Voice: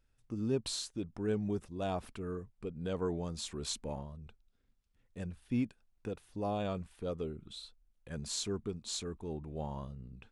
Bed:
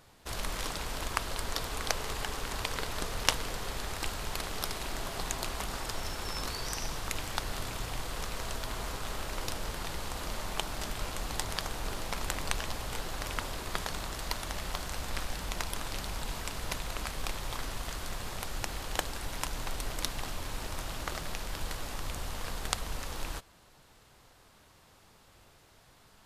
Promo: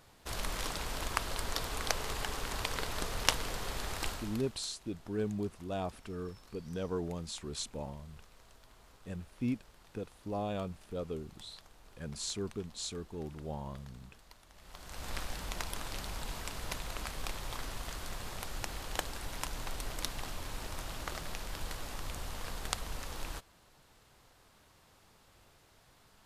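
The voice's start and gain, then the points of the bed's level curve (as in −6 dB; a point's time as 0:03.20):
3.90 s, −1.0 dB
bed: 0:04.09 −1.5 dB
0:04.66 −23 dB
0:14.51 −23 dB
0:15.08 −3.5 dB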